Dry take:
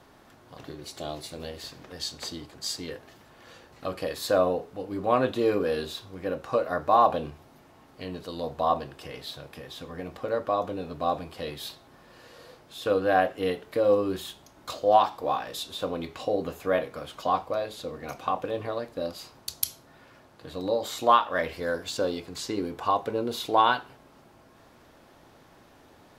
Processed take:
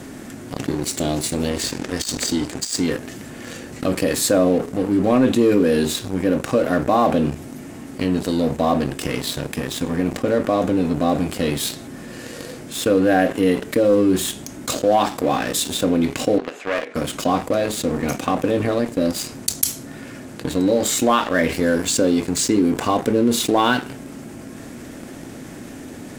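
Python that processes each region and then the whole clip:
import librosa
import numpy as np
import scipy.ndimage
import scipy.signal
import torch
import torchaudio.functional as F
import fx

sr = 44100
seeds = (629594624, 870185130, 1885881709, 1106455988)

y = fx.chain(x, sr, fx.lowpass(hz=10000.0, slope=12),
    fx.peak_eq(hz=150.0, db=-4.5, octaves=1.6),
    fx.over_compress(threshold_db=-37.0, ratio=-0.5), at=(1.51, 2.8))
y = fx.chain(y, sr, fx.tube_stage(drive_db=23.0, bias=0.8),
    fx.bandpass_edges(low_hz=630.0, high_hz=3400.0), at=(16.38, 16.95))
y = fx.graphic_eq(y, sr, hz=(125, 250, 1000, 2000, 4000, 8000), db=(3, 11, -8, 4, -5, 11))
y = fx.leveller(y, sr, passes=2)
y = fx.env_flatten(y, sr, amount_pct=50)
y = F.gain(torch.from_numpy(y), -3.5).numpy()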